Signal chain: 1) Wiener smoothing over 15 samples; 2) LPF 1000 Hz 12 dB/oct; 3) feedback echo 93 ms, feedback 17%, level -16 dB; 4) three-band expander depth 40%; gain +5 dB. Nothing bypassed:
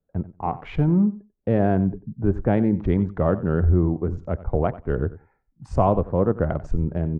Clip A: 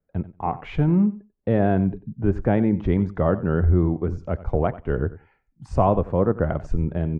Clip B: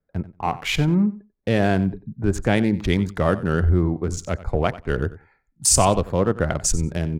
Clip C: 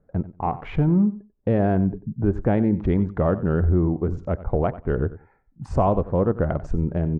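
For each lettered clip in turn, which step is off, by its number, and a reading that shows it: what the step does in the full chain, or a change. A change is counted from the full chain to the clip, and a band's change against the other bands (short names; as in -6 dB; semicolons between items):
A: 1, 2 kHz band +1.5 dB; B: 2, 2 kHz band +10.0 dB; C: 4, crest factor change -4.0 dB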